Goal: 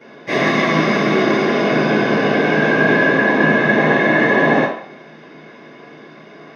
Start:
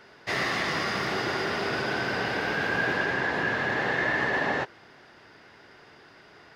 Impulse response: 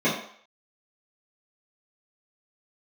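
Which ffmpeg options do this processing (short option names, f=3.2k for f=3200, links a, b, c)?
-filter_complex "[1:a]atrim=start_sample=2205[a];[0:a][a]afir=irnorm=-1:irlink=0,volume=-4.5dB"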